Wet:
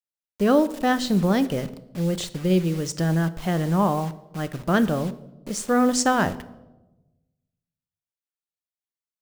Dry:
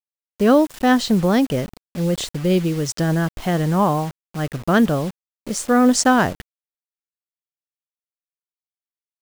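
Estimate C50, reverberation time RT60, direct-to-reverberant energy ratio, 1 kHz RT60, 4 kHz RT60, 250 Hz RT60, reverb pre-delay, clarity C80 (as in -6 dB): 16.5 dB, 1.1 s, 12.0 dB, 0.90 s, 0.70 s, 1.4 s, 5 ms, 18.5 dB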